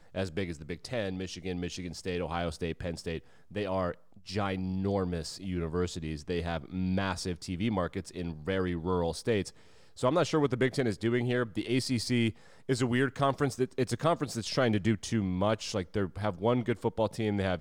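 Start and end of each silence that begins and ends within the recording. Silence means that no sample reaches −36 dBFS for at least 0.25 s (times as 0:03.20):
0:03.19–0:03.55
0:03.92–0:04.29
0:09.49–0:09.99
0:12.31–0:12.69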